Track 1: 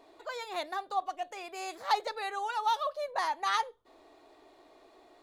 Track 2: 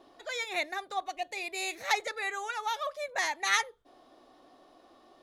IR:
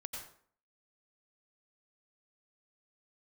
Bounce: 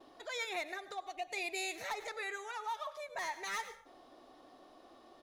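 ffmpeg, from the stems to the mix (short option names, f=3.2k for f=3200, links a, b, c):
-filter_complex "[0:a]lowpass=1.6k,volume=-12.5dB,asplit=2[a][b];[1:a]asoftclip=type=hard:threshold=-25dB,volume=-1,adelay=3.6,volume=-1.5dB,asplit=2[c][d];[d]volume=-14.5dB[e];[b]apad=whole_len=230730[f];[c][f]sidechaincompress=threshold=-56dB:ratio=8:attack=45:release=100[g];[2:a]atrim=start_sample=2205[h];[e][h]afir=irnorm=-1:irlink=0[i];[a][g][i]amix=inputs=3:normalize=0"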